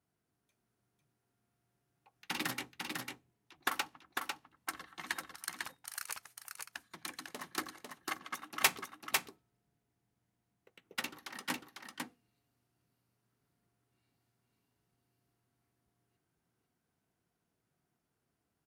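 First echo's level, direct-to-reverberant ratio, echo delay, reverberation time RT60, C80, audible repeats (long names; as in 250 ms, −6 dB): −4.0 dB, no reverb audible, 499 ms, no reverb audible, no reverb audible, 1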